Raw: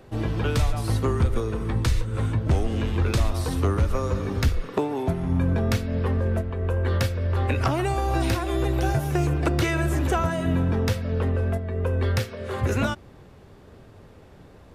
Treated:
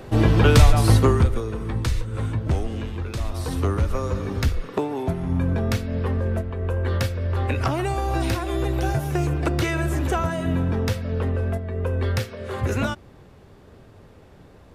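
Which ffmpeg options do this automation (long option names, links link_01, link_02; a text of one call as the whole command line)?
ffmpeg -i in.wav -af "volume=17.5dB,afade=type=out:start_time=0.87:duration=0.51:silence=0.298538,afade=type=out:start_time=2.51:duration=0.59:silence=0.446684,afade=type=in:start_time=3.1:duration=0.44:silence=0.398107" out.wav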